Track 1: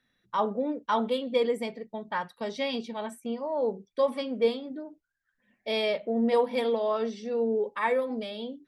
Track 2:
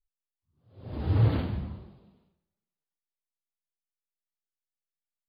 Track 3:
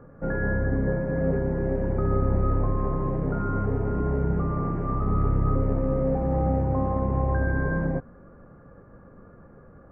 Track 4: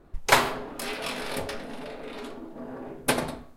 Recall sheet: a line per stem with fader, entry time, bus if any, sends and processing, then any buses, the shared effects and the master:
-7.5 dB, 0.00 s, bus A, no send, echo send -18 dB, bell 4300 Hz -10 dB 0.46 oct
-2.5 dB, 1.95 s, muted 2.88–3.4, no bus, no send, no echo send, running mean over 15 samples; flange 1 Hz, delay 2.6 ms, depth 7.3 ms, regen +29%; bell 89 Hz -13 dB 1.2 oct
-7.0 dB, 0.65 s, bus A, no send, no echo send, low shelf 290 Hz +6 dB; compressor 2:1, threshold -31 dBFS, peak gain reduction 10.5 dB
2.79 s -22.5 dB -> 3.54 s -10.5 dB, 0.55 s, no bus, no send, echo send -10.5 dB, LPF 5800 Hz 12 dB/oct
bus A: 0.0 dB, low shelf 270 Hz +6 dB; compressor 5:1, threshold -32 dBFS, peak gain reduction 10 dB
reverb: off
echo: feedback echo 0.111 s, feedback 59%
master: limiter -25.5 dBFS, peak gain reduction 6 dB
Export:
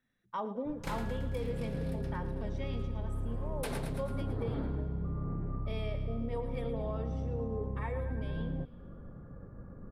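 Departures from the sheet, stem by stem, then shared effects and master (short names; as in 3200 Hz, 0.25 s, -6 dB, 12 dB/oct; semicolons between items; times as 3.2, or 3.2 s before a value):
stem 2: entry 1.95 s -> 3.25 s; stem 4: missing LPF 5800 Hz 12 dB/oct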